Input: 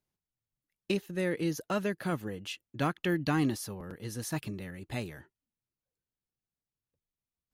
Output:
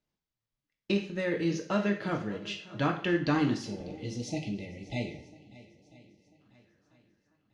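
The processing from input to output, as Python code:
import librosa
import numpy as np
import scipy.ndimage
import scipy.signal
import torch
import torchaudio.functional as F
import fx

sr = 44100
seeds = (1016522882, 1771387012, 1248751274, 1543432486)

p1 = scipy.signal.sosfilt(scipy.signal.butter(4, 6000.0, 'lowpass', fs=sr, output='sos'), x)
p2 = p1 + fx.echo_swing(p1, sr, ms=994, ratio=1.5, feedback_pct=34, wet_db=-19.0, dry=0)
p3 = fx.spec_erase(p2, sr, start_s=3.57, length_s=2.83, low_hz=890.0, high_hz=1900.0)
y = fx.rev_double_slope(p3, sr, seeds[0], early_s=0.47, late_s=2.3, knee_db=-25, drr_db=2.0)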